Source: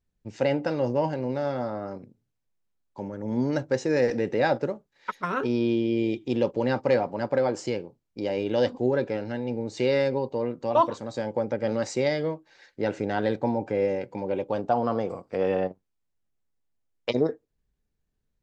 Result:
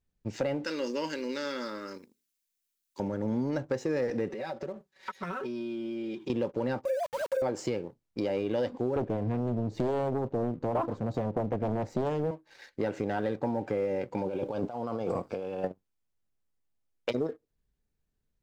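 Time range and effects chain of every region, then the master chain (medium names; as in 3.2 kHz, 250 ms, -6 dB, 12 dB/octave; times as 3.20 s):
0.64–3.00 s: tilt EQ +4 dB/octave + static phaser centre 300 Hz, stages 4
4.30–6.30 s: high-pass 120 Hz 6 dB/octave + comb 5.3 ms, depth 91% + compression 12:1, threshold -36 dBFS
6.85–7.42 s: formants replaced by sine waves + compression 4:1, threshold -25 dBFS + small samples zeroed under -40.5 dBFS
8.96–12.31 s: tilt EQ -4 dB/octave + loudspeaker Doppler distortion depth 0.81 ms
14.22–15.64 s: compressor with a negative ratio -36 dBFS + Butterworth band-stop 1.9 kHz, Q 4.5
whole clip: dynamic bell 4.6 kHz, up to -4 dB, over -44 dBFS, Q 0.72; compression, threshold -30 dBFS; waveshaping leveller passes 1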